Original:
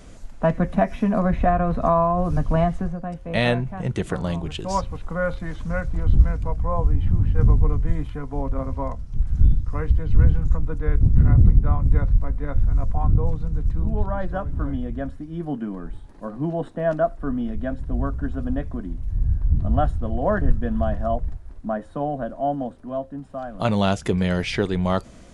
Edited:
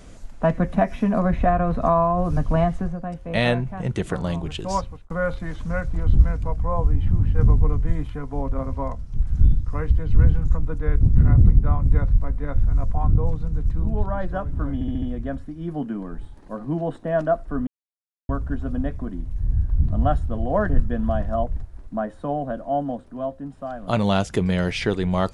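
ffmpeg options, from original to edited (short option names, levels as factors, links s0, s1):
-filter_complex "[0:a]asplit=8[s0][s1][s2][s3][s4][s5][s6][s7];[s0]atrim=end=5.1,asetpts=PTS-STARTPTS,afade=t=out:st=4.74:d=0.36[s8];[s1]atrim=start=5.1:end=14.812,asetpts=PTS-STARTPTS,afade=t=in:d=0.004:c=hsin[s9];[s2]atrim=start=14.738:end=14.812[s10];[s3]atrim=start=14.738:end=14.812[s11];[s4]atrim=start=14.738:end=14.812[s12];[s5]atrim=start=14.738:end=17.39,asetpts=PTS-STARTPTS,afade=t=out:st=2.648:d=0.004:c=hsin[s13];[s6]atrim=start=17.39:end=18.01,asetpts=PTS-STARTPTS,volume=0[s14];[s7]atrim=start=18.01,asetpts=PTS-STARTPTS,afade=t=in:d=0.004:c=hsin[s15];[s8][s9]concat=n=2:v=0:a=1[s16];[s16][s10]acrossfade=d=0.004:c1=hsin:c2=hsin[s17];[s17][s11]acrossfade=d=0.004:c1=hsin:c2=hsin[s18];[s18][s12]acrossfade=d=0.004:c1=hsin:c2=hsin[s19];[s13][s14][s15]concat=n=3:v=0:a=1[s20];[s19][s20]acrossfade=d=0.004:c1=hsin:c2=hsin"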